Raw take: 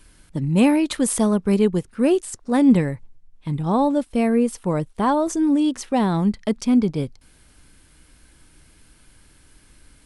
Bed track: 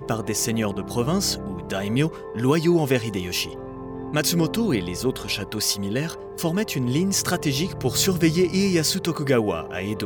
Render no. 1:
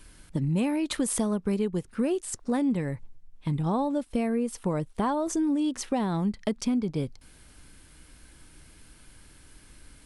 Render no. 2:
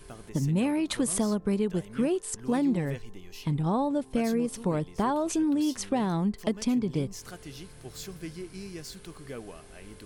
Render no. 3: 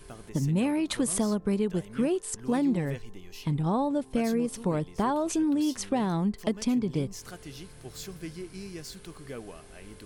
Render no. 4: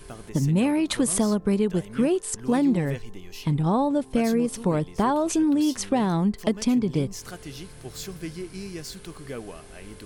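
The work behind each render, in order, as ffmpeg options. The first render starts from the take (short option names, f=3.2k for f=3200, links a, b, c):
-af "acompressor=threshold=-24dB:ratio=6"
-filter_complex "[1:a]volume=-20.5dB[a];[0:a][a]amix=inputs=2:normalize=0"
-af anull
-af "volume=4.5dB"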